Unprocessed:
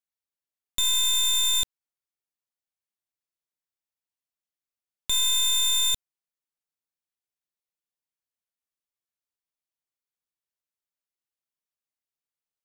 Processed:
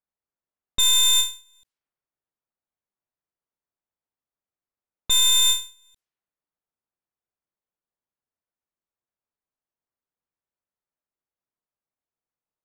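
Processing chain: level-controlled noise filter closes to 1.3 kHz, open at -24.5 dBFS; endings held to a fixed fall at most 160 dB/s; trim +5.5 dB

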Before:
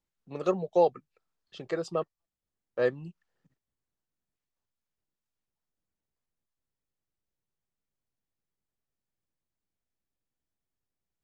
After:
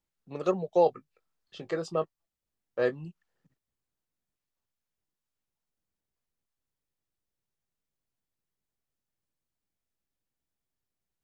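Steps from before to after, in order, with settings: 0.84–3.05 s: doubling 19 ms -10 dB

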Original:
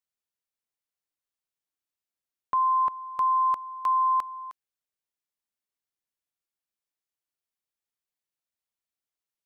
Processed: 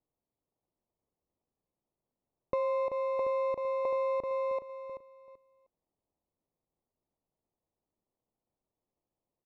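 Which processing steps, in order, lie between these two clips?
feedback delay 384 ms, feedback 25%, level -4.5 dB; sample-and-hold 28×; low-pass 1.1 kHz 12 dB/octave; compression 4:1, threshold -29 dBFS, peak gain reduction 6 dB

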